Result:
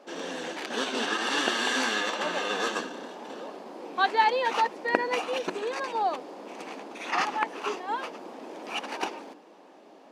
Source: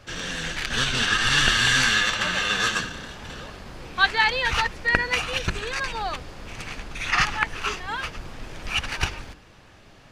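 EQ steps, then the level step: brick-wall FIR high-pass 170 Hz; high-order bell 510 Hz +13 dB 2.3 oct; -9.0 dB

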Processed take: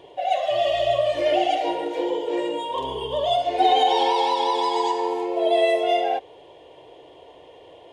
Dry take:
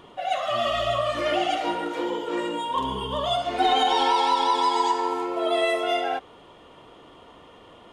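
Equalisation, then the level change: high-pass 190 Hz 6 dB/octave; treble shelf 4 kHz -11.5 dB; static phaser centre 530 Hz, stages 4; +6.5 dB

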